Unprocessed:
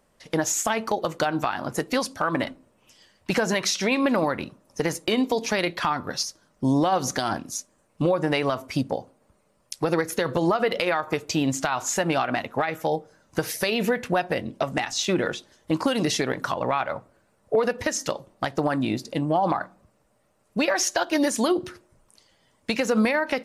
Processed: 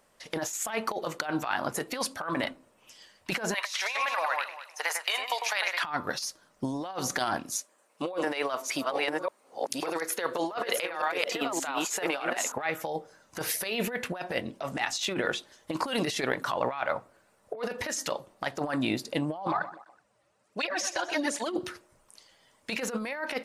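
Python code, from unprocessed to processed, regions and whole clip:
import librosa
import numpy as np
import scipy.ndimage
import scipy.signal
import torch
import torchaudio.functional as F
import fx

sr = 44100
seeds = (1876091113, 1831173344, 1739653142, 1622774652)

y = fx.chain(x, sr, fx.highpass(hz=740.0, slope=24),
    fx.echo_alternate(ms=101, hz=2400.0, feedback_pct=50, wet_db=-5.5), at=(3.54, 5.82))
y = fx.chain(y, sr, fx.reverse_delay(ms=578, wet_db=-3),
    fx.highpass(hz=340.0, slope=12), at=(7.55, 12.52))
y = fx.chain(y, sr, fx.lowpass(hz=8000.0, slope=12),
    fx.echo_feedback(ms=125, feedback_pct=38, wet_db=-15.5),
    fx.flanger_cancel(hz=1.3, depth_ms=4.8), at=(19.47, 21.56))
y = fx.low_shelf(y, sr, hz=350.0, db=-10.5)
y = fx.over_compress(y, sr, threshold_db=-29.0, ratio=-0.5)
y = fx.dynamic_eq(y, sr, hz=5800.0, q=1.7, threshold_db=-46.0, ratio=4.0, max_db=-5)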